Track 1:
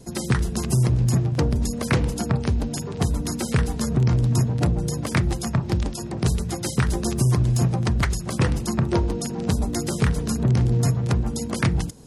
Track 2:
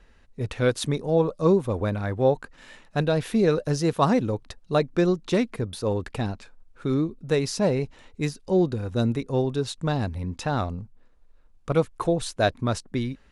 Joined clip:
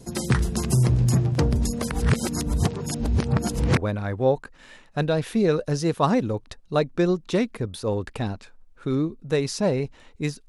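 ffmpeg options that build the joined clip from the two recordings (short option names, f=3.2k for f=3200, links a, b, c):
-filter_complex "[0:a]apad=whole_dur=10.48,atrim=end=10.48,asplit=2[a][b];[a]atrim=end=1.912[c];[b]atrim=start=1.908:end=3.772,asetpts=PTS-STARTPTS,areverse[d];[1:a]atrim=start=1.758:end=8.47[e];[c][d]acrossfade=d=0.004:c1=hsin:c2=hsin[f];[f][e]acrossfade=d=0.004:c1=hsin:c2=hsin"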